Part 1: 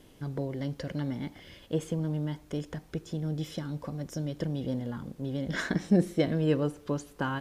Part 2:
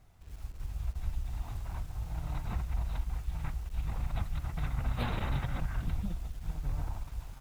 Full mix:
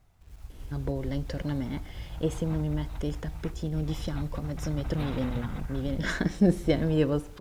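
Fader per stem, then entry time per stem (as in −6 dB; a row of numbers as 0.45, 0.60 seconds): +1.5, −2.5 decibels; 0.50, 0.00 seconds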